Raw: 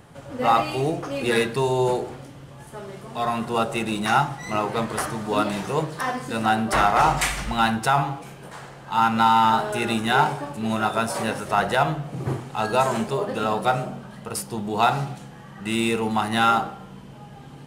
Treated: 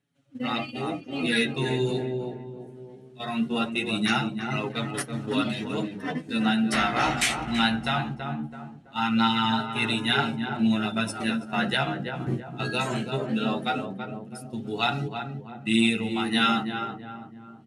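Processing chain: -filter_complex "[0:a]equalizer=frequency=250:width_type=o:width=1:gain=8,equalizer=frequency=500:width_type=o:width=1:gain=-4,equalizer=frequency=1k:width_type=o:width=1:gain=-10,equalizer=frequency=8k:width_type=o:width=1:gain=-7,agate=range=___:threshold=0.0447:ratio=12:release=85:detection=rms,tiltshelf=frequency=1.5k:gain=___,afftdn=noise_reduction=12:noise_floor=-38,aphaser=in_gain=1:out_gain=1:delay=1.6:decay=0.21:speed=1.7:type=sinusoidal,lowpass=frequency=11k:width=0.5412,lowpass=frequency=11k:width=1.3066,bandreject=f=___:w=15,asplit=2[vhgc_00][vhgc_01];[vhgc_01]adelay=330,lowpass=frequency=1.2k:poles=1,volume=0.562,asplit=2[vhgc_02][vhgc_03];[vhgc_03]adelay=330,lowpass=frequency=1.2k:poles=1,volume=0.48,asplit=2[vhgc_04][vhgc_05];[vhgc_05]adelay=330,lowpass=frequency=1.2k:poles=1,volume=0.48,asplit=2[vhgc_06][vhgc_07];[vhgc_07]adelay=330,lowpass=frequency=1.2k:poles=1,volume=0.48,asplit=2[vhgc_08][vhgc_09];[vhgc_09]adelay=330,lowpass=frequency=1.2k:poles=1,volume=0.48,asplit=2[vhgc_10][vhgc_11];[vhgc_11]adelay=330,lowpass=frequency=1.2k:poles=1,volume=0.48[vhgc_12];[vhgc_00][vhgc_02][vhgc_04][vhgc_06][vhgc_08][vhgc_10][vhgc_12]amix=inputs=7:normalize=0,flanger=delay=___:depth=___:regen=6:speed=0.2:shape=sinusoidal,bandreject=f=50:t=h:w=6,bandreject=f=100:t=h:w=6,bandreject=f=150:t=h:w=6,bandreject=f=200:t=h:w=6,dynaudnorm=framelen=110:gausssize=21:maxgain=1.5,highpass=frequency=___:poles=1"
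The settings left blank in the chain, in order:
0.282, -6, 4.8k, 7, 9.6, 100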